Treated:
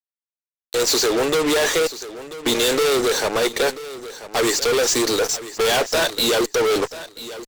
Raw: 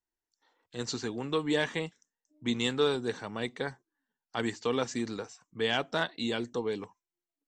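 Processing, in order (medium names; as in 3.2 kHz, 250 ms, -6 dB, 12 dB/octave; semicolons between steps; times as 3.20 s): high-pass 430 Hz 24 dB/octave; high-order bell 1.5 kHz -9 dB 2.4 oct; fuzz box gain 53 dB, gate -56 dBFS; on a send: feedback delay 987 ms, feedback 21%, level -15 dB; on the sum: trim -3.5 dB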